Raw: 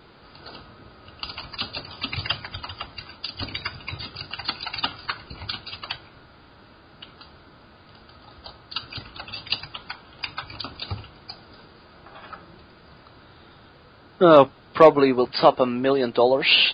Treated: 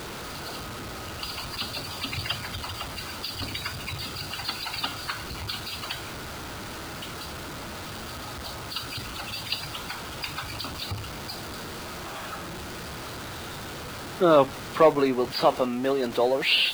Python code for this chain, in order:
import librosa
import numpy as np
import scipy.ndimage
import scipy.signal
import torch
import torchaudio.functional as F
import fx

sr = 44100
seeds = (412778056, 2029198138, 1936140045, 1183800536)

y = x + 0.5 * 10.0 ** (-26.0 / 20.0) * np.sign(x)
y = y * 10.0 ** (-6.0 / 20.0)